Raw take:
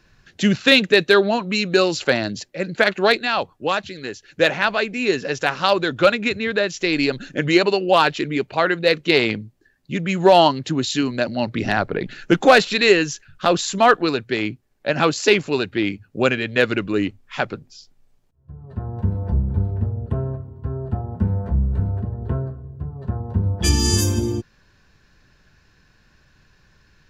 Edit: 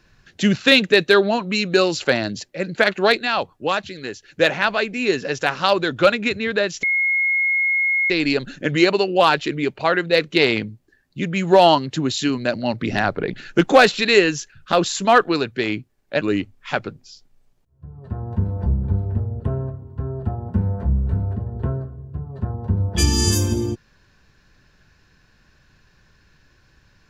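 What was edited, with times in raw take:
0:06.83: insert tone 2,160 Hz −16 dBFS 1.27 s
0:14.94–0:16.87: remove

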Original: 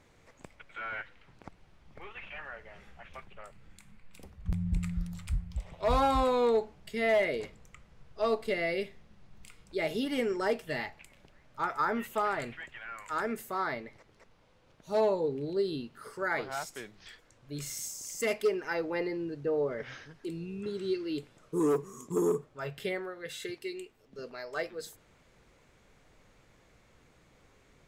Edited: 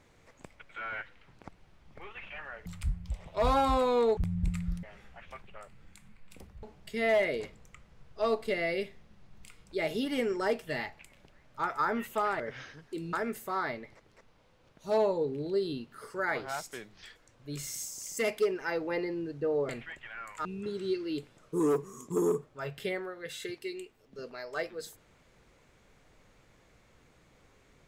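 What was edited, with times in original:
0:02.66–0:04.46: swap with 0:05.12–0:06.63
0:12.40–0:13.16: swap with 0:19.72–0:20.45

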